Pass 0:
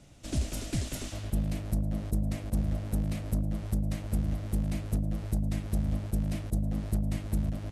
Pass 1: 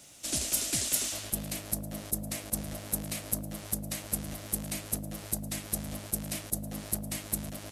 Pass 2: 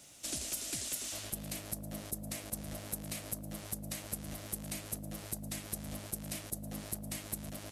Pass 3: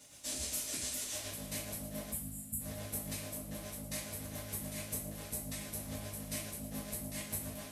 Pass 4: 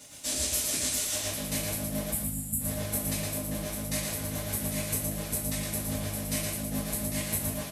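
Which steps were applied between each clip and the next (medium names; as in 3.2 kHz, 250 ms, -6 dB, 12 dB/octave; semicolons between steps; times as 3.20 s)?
RIAA curve recording; trim +2 dB
compression, threshold -32 dBFS, peak gain reduction 9 dB; trim -3 dB
spectral selection erased 2.12–2.60 s, 260–6800 Hz; tremolo 7.1 Hz, depth 62%; two-slope reverb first 0.43 s, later 3.5 s, from -21 dB, DRR -8 dB; trim -5 dB
delay 115 ms -4.5 dB; trim +8 dB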